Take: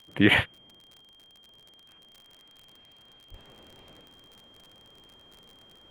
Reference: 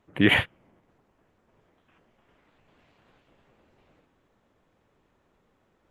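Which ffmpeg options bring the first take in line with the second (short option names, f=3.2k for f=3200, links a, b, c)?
-filter_complex "[0:a]adeclick=t=4,bandreject=f=3.2k:w=30,asplit=3[a][b][c];[a]afade=t=out:st=3.3:d=0.02[d];[b]highpass=f=140:w=0.5412,highpass=f=140:w=1.3066,afade=t=in:st=3.3:d=0.02,afade=t=out:st=3.42:d=0.02[e];[c]afade=t=in:st=3.42:d=0.02[f];[d][e][f]amix=inputs=3:normalize=0,asetnsamples=n=441:p=0,asendcmd='3.34 volume volume -8.5dB',volume=0dB"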